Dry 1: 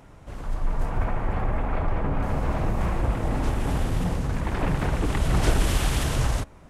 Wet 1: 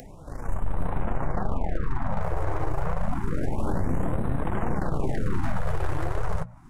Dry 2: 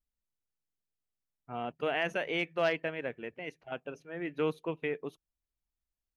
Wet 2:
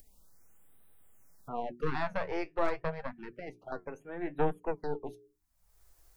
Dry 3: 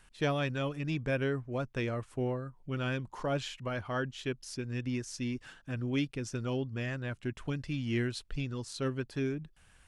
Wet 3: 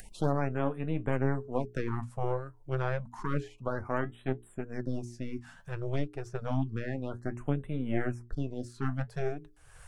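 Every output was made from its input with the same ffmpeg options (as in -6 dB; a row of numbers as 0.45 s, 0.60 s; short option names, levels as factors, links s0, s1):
-filter_complex "[0:a]acrossover=split=320|960|2100[s0][s1][s2][s3];[s3]acompressor=threshold=0.00251:ratio=20[s4];[s0][s1][s2][s4]amix=inputs=4:normalize=0,aeval=exprs='0.398*(cos(1*acos(clip(val(0)/0.398,-1,1)))-cos(1*PI/2))+0.141*(cos(2*acos(clip(val(0)/0.398,-1,1)))-cos(2*PI/2))+0.00501*(cos(3*acos(clip(val(0)/0.398,-1,1)))-cos(3*PI/2))+0.2*(cos(4*acos(clip(val(0)/0.398,-1,1)))-cos(4*PI/2))+0.0501*(cos(8*acos(clip(val(0)/0.398,-1,1)))-cos(8*PI/2))':c=same,asoftclip=type=hard:threshold=0.224,bandreject=f=60:t=h:w=6,bandreject=f=120:t=h:w=6,bandreject=f=180:t=h:w=6,bandreject=f=240:t=h:w=6,bandreject=f=300:t=h:w=6,bandreject=f=360:t=h:w=6,bandreject=f=420:t=h:w=6,flanger=delay=3.9:depth=8:regen=59:speed=0.64:shape=triangular,alimiter=limit=0.1:level=0:latency=1:release=96,equalizer=f=3000:w=1:g=-9,acompressor=mode=upward:threshold=0.00794:ratio=2.5,afftfilt=real='re*(1-between(b*sr/1024,200*pow(5800/200,0.5+0.5*sin(2*PI*0.29*pts/sr))/1.41,200*pow(5800/200,0.5+0.5*sin(2*PI*0.29*pts/sr))*1.41))':imag='im*(1-between(b*sr/1024,200*pow(5800/200,0.5+0.5*sin(2*PI*0.29*pts/sr))/1.41,200*pow(5800/200,0.5+0.5*sin(2*PI*0.29*pts/sr))*1.41))':win_size=1024:overlap=0.75,volume=1.78"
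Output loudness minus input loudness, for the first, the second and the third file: -3.5 LU, -2.0 LU, +0.5 LU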